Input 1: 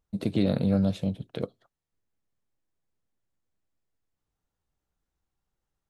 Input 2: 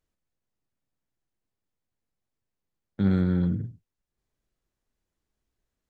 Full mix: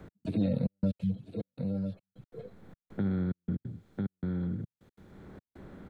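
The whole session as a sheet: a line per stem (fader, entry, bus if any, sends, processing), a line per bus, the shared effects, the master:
+2.0 dB, 0.00 s, no send, echo send -13.5 dB, median-filter separation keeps harmonic
-7.5 dB, 0.00 s, no send, echo send -4.5 dB, per-bin compression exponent 0.6; high shelf 2900 Hz -11 dB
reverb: off
echo: echo 0.996 s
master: step gate "x..xxxxx..x.xxxx" 181 bpm -60 dB; three-band squash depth 70%

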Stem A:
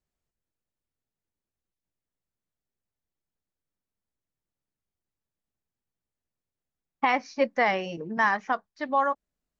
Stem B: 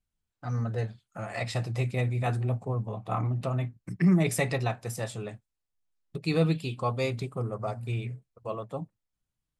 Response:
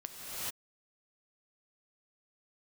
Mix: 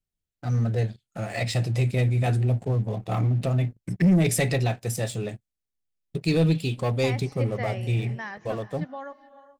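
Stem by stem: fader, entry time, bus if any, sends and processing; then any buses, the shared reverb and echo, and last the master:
-9.0 dB, 0.00 s, send -14.5 dB, dry
-0.5 dB, 0.00 s, no send, sample leveller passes 2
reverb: on, pre-delay 3 ms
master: bell 1100 Hz -10 dB 0.98 oct

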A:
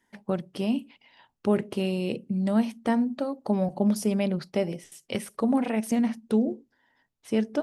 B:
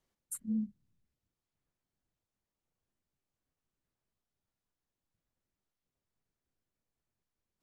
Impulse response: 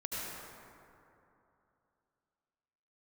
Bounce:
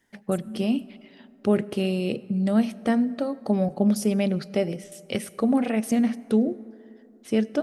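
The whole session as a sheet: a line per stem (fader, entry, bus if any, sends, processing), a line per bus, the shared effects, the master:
+2.0 dB, 0.00 s, send -22 dB, bell 950 Hz -10 dB 0.24 oct
+2.0 dB, 0.00 s, send -20 dB, limiter -34 dBFS, peak gain reduction 7 dB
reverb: on, RT60 2.9 s, pre-delay 67 ms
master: dry

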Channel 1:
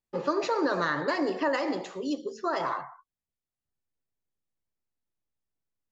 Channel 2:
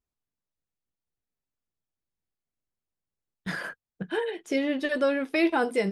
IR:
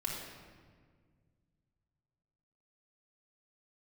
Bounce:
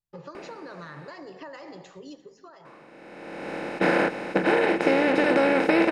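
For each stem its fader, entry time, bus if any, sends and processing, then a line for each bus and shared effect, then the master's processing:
2.12 s -6.5 dB -> 2.65 s -16.5 dB, 0.00 s, no send, echo send -20.5 dB, resonant low shelf 190 Hz +6 dB, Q 3; compressor 6:1, threshold -32 dBFS, peak gain reduction 9.5 dB
-1.5 dB, 0.35 s, muted 1.09–2.65, no send, no echo send, per-bin compression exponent 0.2; high shelf 3700 Hz -8.5 dB; auto duck -18 dB, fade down 0.65 s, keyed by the first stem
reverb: off
echo: feedback echo 0.347 s, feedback 41%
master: dry

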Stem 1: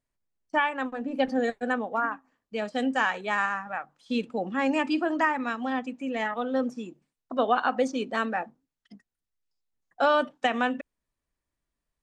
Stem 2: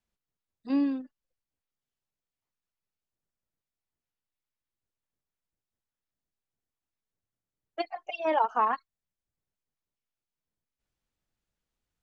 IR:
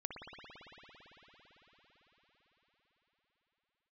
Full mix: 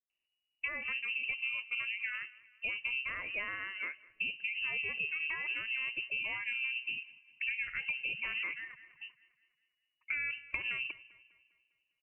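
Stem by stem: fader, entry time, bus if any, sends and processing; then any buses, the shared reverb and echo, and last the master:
+0.5 dB, 0.10 s, no send, echo send -24 dB, octaver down 1 oct, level 0 dB; low shelf 66 Hz -11 dB; compressor 2.5:1, threshold -28 dBFS, peak gain reduction 7.5 dB
-10.5 dB, 0.00 s, no send, echo send -13.5 dB, HPF 1100 Hz; reverb removal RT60 0.62 s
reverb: off
echo: feedback echo 0.201 s, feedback 47%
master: bell 1600 Hz -14 dB 1 oct; inverted band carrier 2900 Hz; compressor, threshold -33 dBFS, peak gain reduction 8.5 dB

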